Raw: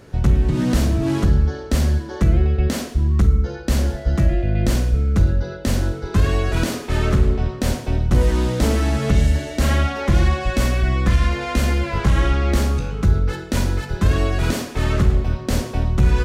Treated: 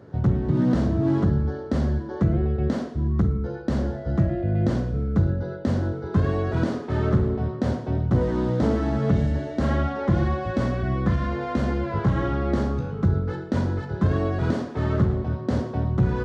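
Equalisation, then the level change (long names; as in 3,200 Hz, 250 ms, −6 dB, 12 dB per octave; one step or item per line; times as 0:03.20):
high-pass filter 87 Hz 24 dB per octave
head-to-tape spacing loss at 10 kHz 29 dB
parametric band 2,500 Hz −10 dB 0.59 octaves
0.0 dB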